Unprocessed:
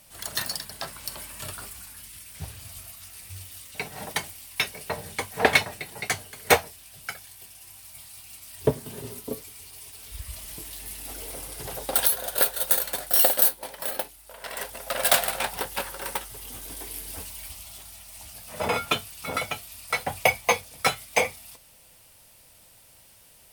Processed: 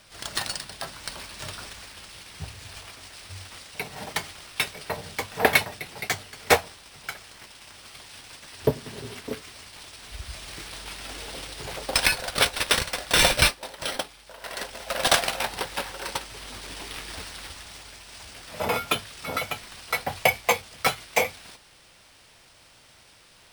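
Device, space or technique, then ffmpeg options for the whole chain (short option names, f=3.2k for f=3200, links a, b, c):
crushed at another speed: -af "asetrate=35280,aresample=44100,acrusher=samples=4:mix=1:aa=0.000001,asetrate=55125,aresample=44100"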